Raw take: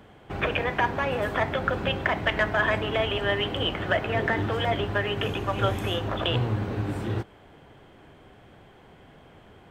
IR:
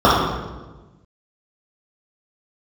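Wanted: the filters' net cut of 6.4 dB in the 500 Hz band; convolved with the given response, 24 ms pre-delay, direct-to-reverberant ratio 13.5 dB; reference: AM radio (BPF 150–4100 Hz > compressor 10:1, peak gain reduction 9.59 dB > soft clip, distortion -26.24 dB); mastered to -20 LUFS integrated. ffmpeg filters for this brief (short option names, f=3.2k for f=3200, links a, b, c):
-filter_complex "[0:a]equalizer=f=500:t=o:g=-8.5,asplit=2[a][b];[1:a]atrim=start_sample=2205,adelay=24[c];[b][c]afir=irnorm=-1:irlink=0,volume=-43.5dB[d];[a][d]amix=inputs=2:normalize=0,highpass=150,lowpass=4.1k,acompressor=threshold=-29dB:ratio=10,asoftclip=threshold=-19dB,volume=14dB"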